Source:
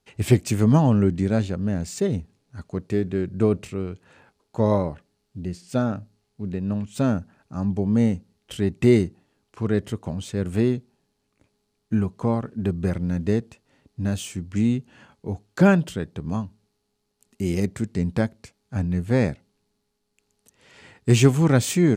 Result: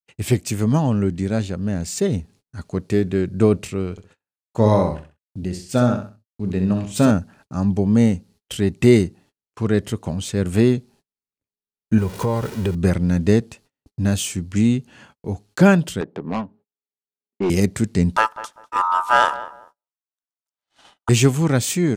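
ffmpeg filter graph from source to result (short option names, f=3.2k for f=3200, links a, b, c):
-filter_complex "[0:a]asettb=1/sr,asplit=3[a][b][c];[a]atrim=end=3.914[d];[b]atrim=start=3.91:end=7.11,asetpts=PTS-STARTPTS,afade=t=in:d=0.004:c=qsin,afade=t=out:st=3.196:d=0.004:c=qsin,agate=range=-33dB:threshold=-48dB:ratio=3:release=100:detection=peak,asplit=2[e][f];[f]adelay=26,volume=-13.5dB[g];[e][g]amix=inputs=2:normalize=0,atrim=end_sample=141120,aecho=1:1:65|130|195:0.422|0.118|0.0331,atrim=end_sample=141120[h];[c]atrim=start=7.106[i];[d][h]acrossfade=d=0.004:c1=hsin:c2=qsin[j];[j][i]acrossfade=d=0.004:c1=qsin:c2=hsin,asettb=1/sr,asplit=3[k][l][m];[k]atrim=end=11.984[n];[l]atrim=start=11.98:end=12.75,asetpts=PTS-STARTPTS,afade=t=in:d=0.004:c=qsin,afade=t=out:st=0.766:d=0.004:c=qsin,aeval=exprs='val(0)+0.5*0.0141*sgn(val(0))':c=same,aecho=1:1:2.1:0.46,atrim=end_sample=33957,acompressor=threshold=-25dB:ratio=2.5:attack=3.2:release=140:knee=1:detection=peak[o];[m]atrim=start=12.746[p];[n][o]acrossfade=d=0.004:c1=hsin:c2=qsin[q];[q][p]acrossfade=d=0.004:c1=qsin:c2=hsin,asettb=1/sr,asplit=3[r][s][t];[r]atrim=end=16.014[u];[s]atrim=start=16.01:end=17.5,asetpts=PTS-STARTPTS,afade=t=in:d=0.004:c=qsin,afade=t=out:st=1.486:d=0.004:c=qsin,highpass=320,lowpass=4.3k,adynamicsmooth=sensitivity=3.5:basefreq=760,aeval=exprs='0.1*sin(PI/2*1.58*val(0)/0.1)':c=same[v];[t]atrim=start=17.496[w];[u][v]acrossfade=d=0.004:c1=hsin:c2=qsin[x];[x][w]acrossfade=d=0.004:c1=qsin:c2=hsin,asettb=1/sr,asplit=3[y][z][aa];[y]atrim=end=18.164[ab];[z]atrim=start=18.16:end=21.09,asetpts=PTS-STARTPTS,afade=t=in:d=0.004:c=qsin,afade=t=out:st=2.926:d=0.004:c=qsin,aeval=exprs='val(0)*sin(2*PI*1100*n/s)':c=same,asplit=2[ac][ad];[ad]adelay=197,lowpass=f=1.1k:p=1,volume=-12.5dB,asplit=2[ae][af];[af]adelay=197,lowpass=f=1.1k:p=1,volume=0.28,asplit=2[ag][ah];[ah]adelay=197,lowpass=f=1.1k:p=1,volume=0.28[ai];[ac][ae][ag][ai]amix=inputs=4:normalize=0,atrim=end_sample=129213[aj];[aa]atrim=start=21.086[ak];[ab][aj]acrossfade=d=0.004:c1=hsin:c2=qsin[al];[al][ak]acrossfade=d=0.004:c1=qsin:c2=hsin,dynaudnorm=f=430:g=7:m=11.5dB,highshelf=f=3.1k:g=5.5,agate=range=-37dB:threshold=-46dB:ratio=16:detection=peak,volume=-1.5dB"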